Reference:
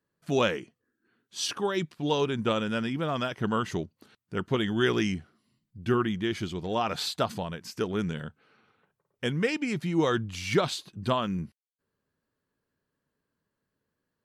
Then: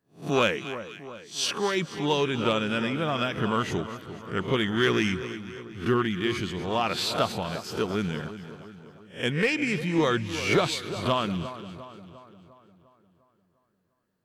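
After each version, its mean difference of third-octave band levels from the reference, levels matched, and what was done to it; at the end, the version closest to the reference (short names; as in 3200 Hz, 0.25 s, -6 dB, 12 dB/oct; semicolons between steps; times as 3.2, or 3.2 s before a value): 6.0 dB: spectral swells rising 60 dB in 0.31 s; dynamic EQ 2400 Hz, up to +5 dB, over -45 dBFS, Q 1.9; in parallel at -10.5 dB: wavefolder -17.5 dBFS; on the sum: split-band echo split 1400 Hz, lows 0.351 s, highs 0.243 s, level -12 dB; gain -1.5 dB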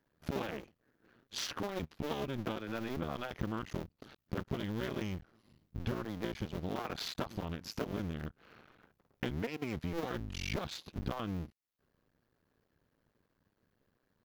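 8.0 dB: cycle switcher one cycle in 2, muted; low shelf 410 Hz +5 dB; compressor 6:1, threshold -41 dBFS, peak gain reduction 21 dB; bell 8600 Hz -11 dB 0.48 oct; gain +6 dB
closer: first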